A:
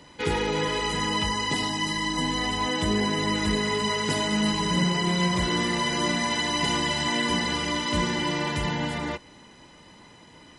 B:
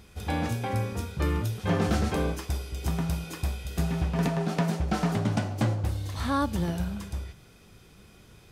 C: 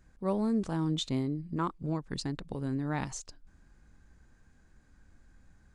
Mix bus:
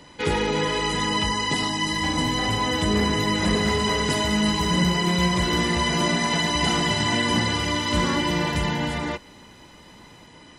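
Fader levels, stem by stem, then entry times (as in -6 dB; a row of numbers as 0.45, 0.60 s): +2.5, -3.0, -10.5 dB; 0.00, 1.75, 0.00 s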